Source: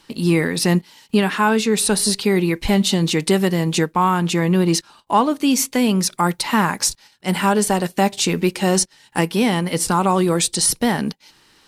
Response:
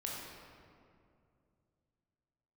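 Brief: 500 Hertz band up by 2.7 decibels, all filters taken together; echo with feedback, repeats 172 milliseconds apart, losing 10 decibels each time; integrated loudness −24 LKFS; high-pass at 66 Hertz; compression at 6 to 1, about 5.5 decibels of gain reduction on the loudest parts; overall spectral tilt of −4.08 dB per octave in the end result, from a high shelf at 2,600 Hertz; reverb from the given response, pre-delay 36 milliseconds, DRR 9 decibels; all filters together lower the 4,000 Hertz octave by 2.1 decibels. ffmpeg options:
-filter_complex "[0:a]highpass=66,equalizer=frequency=500:width_type=o:gain=3.5,highshelf=frequency=2600:gain=5,equalizer=frequency=4000:width_type=o:gain=-7.5,acompressor=threshold=-16dB:ratio=6,aecho=1:1:172|344|516|688:0.316|0.101|0.0324|0.0104,asplit=2[link_01][link_02];[1:a]atrim=start_sample=2205,adelay=36[link_03];[link_02][link_03]afir=irnorm=-1:irlink=0,volume=-10dB[link_04];[link_01][link_04]amix=inputs=2:normalize=0,volume=-4dB"

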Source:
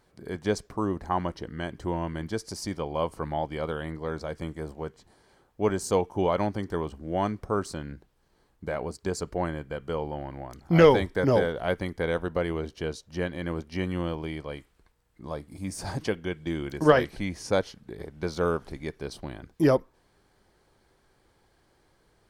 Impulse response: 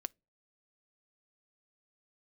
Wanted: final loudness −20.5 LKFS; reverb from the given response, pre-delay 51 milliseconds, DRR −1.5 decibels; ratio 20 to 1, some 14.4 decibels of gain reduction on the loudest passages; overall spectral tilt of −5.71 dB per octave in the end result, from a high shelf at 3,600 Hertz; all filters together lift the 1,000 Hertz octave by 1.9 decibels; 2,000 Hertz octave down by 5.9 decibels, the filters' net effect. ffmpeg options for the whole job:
-filter_complex "[0:a]equalizer=frequency=1000:width_type=o:gain=5,equalizer=frequency=2000:width_type=o:gain=-8.5,highshelf=frequency=3600:gain=-8,acompressor=threshold=-25dB:ratio=20,asplit=2[link_01][link_02];[1:a]atrim=start_sample=2205,adelay=51[link_03];[link_02][link_03]afir=irnorm=-1:irlink=0,volume=3.5dB[link_04];[link_01][link_04]amix=inputs=2:normalize=0,volume=9.5dB"

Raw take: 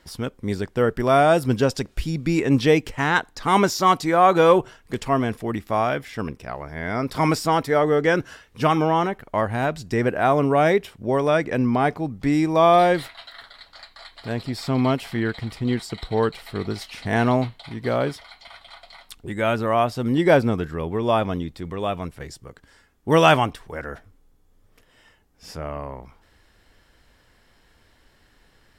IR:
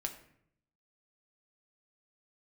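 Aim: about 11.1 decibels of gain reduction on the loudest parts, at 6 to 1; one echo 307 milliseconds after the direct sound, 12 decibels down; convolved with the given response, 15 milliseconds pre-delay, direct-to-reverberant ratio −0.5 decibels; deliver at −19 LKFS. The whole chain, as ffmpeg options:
-filter_complex "[0:a]acompressor=threshold=-23dB:ratio=6,aecho=1:1:307:0.251,asplit=2[link_01][link_02];[1:a]atrim=start_sample=2205,adelay=15[link_03];[link_02][link_03]afir=irnorm=-1:irlink=0,volume=0.5dB[link_04];[link_01][link_04]amix=inputs=2:normalize=0,volume=6.5dB"

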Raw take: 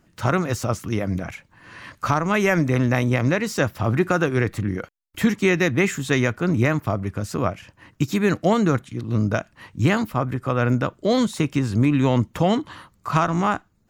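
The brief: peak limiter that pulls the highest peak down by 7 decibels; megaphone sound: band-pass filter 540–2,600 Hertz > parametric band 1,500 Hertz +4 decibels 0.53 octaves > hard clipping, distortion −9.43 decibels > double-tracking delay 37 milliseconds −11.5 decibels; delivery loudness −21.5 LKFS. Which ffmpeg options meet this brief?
ffmpeg -i in.wav -filter_complex "[0:a]alimiter=limit=-12dB:level=0:latency=1,highpass=540,lowpass=2600,equalizer=frequency=1500:width_type=o:width=0.53:gain=4,asoftclip=type=hard:threshold=-22.5dB,asplit=2[link_01][link_02];[link_02]adelay=37,volume=-11.5dB[link_03];[link_01][link_03]amix=inputs=2:normalize=0,volume=9.5dB" out.wav

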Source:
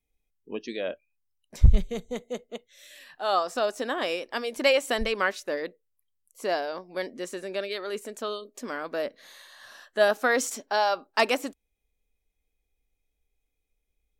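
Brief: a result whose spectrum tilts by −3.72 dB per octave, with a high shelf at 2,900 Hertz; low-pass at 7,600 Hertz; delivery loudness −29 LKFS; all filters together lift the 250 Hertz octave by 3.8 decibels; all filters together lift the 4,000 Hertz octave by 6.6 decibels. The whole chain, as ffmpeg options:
ffmpeg -i in.wav -af "lowpass=7600,equalizer=frequency=250:width_type=o:gain=4.5,highshelf=frequency=2900:gain=5.5,equalizer=frequency=4000:width_type=o:gain=4.5,volume=-3dB" out.wav

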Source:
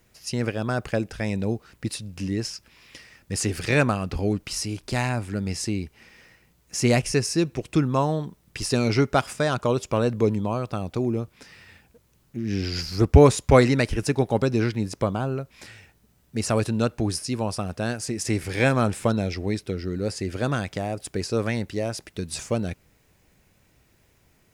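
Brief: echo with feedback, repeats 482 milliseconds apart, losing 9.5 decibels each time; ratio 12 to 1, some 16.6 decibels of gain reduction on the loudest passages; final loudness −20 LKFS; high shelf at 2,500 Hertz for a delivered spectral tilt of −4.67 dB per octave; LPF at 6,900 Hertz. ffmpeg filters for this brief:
ffmpeg -i in.wav -af "lowpass=6900,highshelf=frequency=2500:gain=4,acompressor=threshold=-25dB:ratio=12,aecho=1:1:482|964|1446|1928:0.335|0.111|0.0365|0.012,volume=11dB" out.wav

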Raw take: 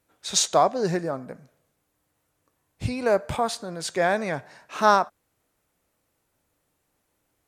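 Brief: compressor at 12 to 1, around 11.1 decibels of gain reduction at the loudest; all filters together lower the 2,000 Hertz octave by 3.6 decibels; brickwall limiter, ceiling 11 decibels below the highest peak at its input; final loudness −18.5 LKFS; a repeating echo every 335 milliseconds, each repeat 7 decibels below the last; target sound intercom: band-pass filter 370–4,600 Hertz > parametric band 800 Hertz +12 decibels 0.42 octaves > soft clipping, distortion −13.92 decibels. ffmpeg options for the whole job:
ffmpeg -i in.wav -af "equalizer=frequency=2000:width_type=o:gain=-6,acompressor=threshold=-25dB:ratio=12,alimiter=level_in=1.5dB:limit=-24dB:level=0:latency=1,volume=-1.5dB,highpass=370,lowpass=4600,equalizer=frequency=800:width_type=o:width=0.42:gain=12,aecho=1:1:335|670|1005|1340|1675:0.447|0.201|0.0905|0.0407|0.0183,asoftclip=threshold=-27dB,volume=18dB" out.wav

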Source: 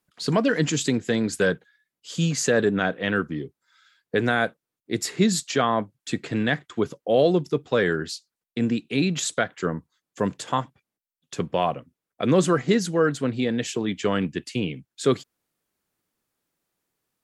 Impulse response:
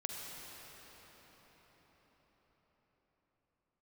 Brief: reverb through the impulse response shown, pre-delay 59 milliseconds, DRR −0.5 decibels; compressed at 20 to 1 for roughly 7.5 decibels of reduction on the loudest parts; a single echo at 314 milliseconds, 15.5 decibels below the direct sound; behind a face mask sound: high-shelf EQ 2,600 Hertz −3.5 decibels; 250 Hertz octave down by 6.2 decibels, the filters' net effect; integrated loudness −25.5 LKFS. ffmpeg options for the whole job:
-filter_complex "[0:a]equalizer=frequency=250:width_type=o:gain=-8.5,acompressor=threshold=-24dB:ratio=20,aecho=1:1:314:0.168,asplit=2[link_01][link_02];[1:a]atrim=start_sample=2205,adelay=59[link_03];[link_02][link_03]afir=irnorm=-1:irlink=0,volume=-0.5dB[link_04];[link_01][link_04]amix=inputs=2:normalize=0,highshelf=frequency=2600:gain=-3.5,volume=3.5dB"

